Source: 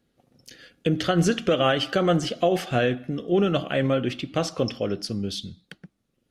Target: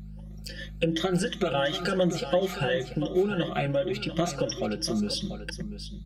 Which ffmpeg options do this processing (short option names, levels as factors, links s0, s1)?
-af "afftfilt=real='re*pow(10,13/40*sin(2*PI*(1.2*log(max(b,1)*sr/1024/100)/log(2)-(2.7)*(pts-256)/sr)))':imag='im*pow(10,13/40*sin(2*PI*(1.2*log(max(b,1)*sr/1024/100)/log(2)-(2.7)*(pts-256)/sr)))':win_size=1024:overlap=0.75,bandreject=f=60:t=h:w=6,bandreject=f=120:t=h:w=6,bandreject=f=180:t=h:w=6,aeval=exprs='val(0)+0.00891*(sin(2*PI*50*n/s)+sin(2*PI*2*50*n/s)/2+sin(2*PI*3*50*n/s)/3+sin(2*PI*4*50*n/s)/4+sin(2*PI*5*50*n/s)/5)':c=same,acompressor=threshold=0.0398:ratio=5,aecho=1:1:718:0.282,acontrast=66,asetrate=45938,aresample=44100,equalizer=f=69:w=4.4:g=-7.5,agate=range=0.0708:threshold=0.00794:ratio=16:detection=peak,aecho=1:1:5.7:0.95,volume=0.501"